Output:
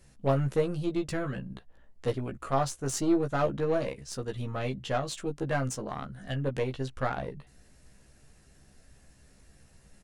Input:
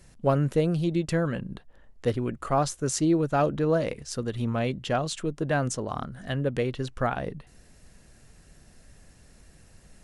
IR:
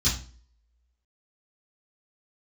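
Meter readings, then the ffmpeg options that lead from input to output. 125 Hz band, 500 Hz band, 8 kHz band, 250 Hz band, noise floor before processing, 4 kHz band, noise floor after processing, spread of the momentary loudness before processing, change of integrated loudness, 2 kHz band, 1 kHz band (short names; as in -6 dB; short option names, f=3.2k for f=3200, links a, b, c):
-4.5 dB, -3.5 dB, -4.0 dB, -4.5 dB, -55 dBFS, -4.0 dB, -60 dBFS, 10 LU, -4.0 dB, -3.5 dB, -3.5 dB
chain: -filter_complex "[0:a]aeval=exprs='0.266*(cos(1*acos(clip(val(0)/0.266,-1,1)))-cos(1*PI/2))+0.0188*(cos(6*acos(clip(val(0)/0.266,-1,1)))-cos(6*PI/2))':c=same,asplit=2[a][b];[b]adelay=15,volume=-4dB[c];[a][c]amix=inputs=2:normalize=0,volume=-5.5dB"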